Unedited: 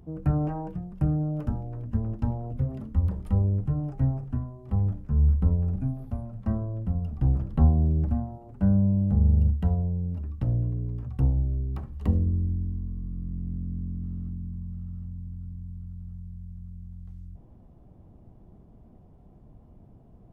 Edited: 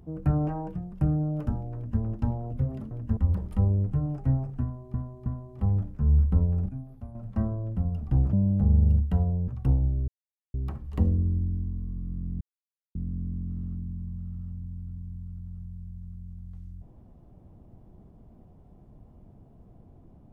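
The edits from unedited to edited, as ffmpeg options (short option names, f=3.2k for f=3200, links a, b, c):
-filter_complex "[0:a]asplit=11[a][b][c][d][e][f][g][h][i][j][k];[a]atrim=end=2.912[l];[b]atrim=start=1.748:end=2.012[m];[c]atrim=start=2.908:end=4.682[n];[d]atrim=start=4.358:end=4.682[o];[e]atrim=start=4.358:end=5.792[p];[f]atrim=start=5.788:end=6.252,asetpts=PTS-STARTPTS,volume=-8.5dB[q];[g]atrim=start=6.248:end=7.432[r];[h]atrim=start=8.838:end=9.992[s];[i]atrim=start=11.018:end=11.62,asetpts=PTS-STARTPTS,afade=t=out:st=0.598:d=0.004:c=hsin,apad=pad_dur=0.46[t];[j]atrim=start=11.62:end=13.49,asetpts=PTS-STARTPTS,afade=t=in:d=0.004:c=hsin,afade=t=out:st=1.866:d=0.004:c=hsin,apad=pad_dur=0.54[u];[k]atrim=start=13.49,asetpts=PTS-STARTPTS,afade=t=in:d=0.004:c=hsin[v];[l][m]acrossfade=d=0.004:c1=hsin:c2=hsin[w];[w][n]acrossfade=d=0.004:c1=hsin:c2=hsin[x];[x][o]acrossfade=d=0.004:c1=hsin:c2=hsin[y];[y][p]acrossfade=d=0.004:c1=hsin:c2=hsin[z];[z][q]acrossfade=d=0.004:c1=hsin:c2=hsin[aa];[aa][r]acrossfade=d=0.004:c1=hsin:c2=hsin[ab];[ab][s]acrossfade=d=0.004:c1=hsin:c2=hsin[ac];[t][u][v]concat=n=3:v=0:a=1[ad];[ac][ad]acrossfade=d=0.004:c1=hsin:c2=hsin"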